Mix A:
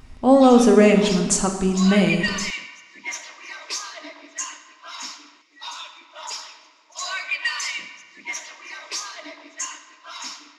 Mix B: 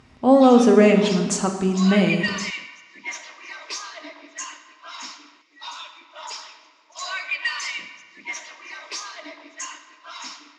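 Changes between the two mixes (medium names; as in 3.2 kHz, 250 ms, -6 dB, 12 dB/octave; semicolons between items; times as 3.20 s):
speech: add high-pass 110 Hz; master: add distance through air 62 m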